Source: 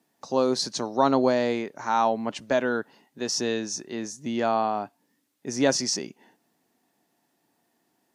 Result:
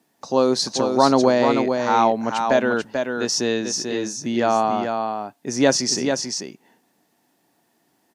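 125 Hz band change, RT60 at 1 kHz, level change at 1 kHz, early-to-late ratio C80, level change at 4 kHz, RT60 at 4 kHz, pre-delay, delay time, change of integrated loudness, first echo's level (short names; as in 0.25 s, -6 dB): +6.5 dB, none, +6.0 dB, none, +6.0 dB, none, none, 0.44 s, +5.5 dB, -5.5 dB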